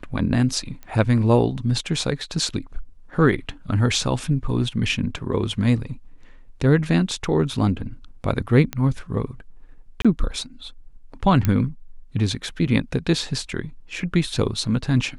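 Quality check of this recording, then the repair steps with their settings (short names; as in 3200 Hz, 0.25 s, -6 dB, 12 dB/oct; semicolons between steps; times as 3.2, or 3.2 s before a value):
0.83 pop -24 dBFS
8.73 pop -11 dBFS
10.02–10.05 gap 26 ms
11.45 pop -8 dBFS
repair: de-click; interpolate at 10.02, 26 ms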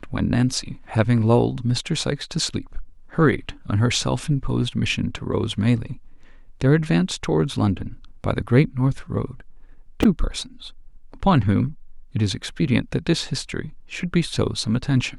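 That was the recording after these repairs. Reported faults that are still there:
8.73 pop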